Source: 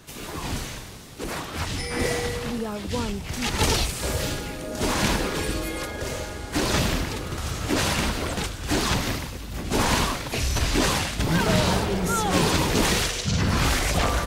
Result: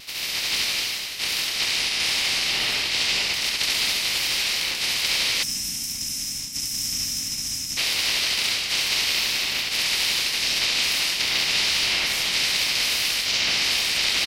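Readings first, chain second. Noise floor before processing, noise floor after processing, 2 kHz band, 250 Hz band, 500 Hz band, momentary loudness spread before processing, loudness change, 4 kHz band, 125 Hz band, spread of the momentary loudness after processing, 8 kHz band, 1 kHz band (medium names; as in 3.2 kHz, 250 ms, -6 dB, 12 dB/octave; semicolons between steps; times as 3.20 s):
-36 dBFS, -30 dBFS, +4.5 dB, -16.0 dB, -13.0 dB, 10 LU, +3.5 dB, +9.5 dB, -18.5 dB, 6 LU, +4.5 dB, -8.5 dB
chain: spectral peaks clipped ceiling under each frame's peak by 29 dB; on a send: reverse bouncing-ball echo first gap 70 ms, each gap 1.2×, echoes 5; on the sum: vibrato 2.4 Hz 53 cents; band-stop 3.4 kHz, Q 28; delay 246 ms -14 dB; time-frequency box 5.43–7.77 s, 320–5000 Hz -19 dB; reverse; compression 6:1, threshold -29 dBFS, peak gain reduction 13.5 dB; reverse; high-order bell 3.3 kHz +12.5 dB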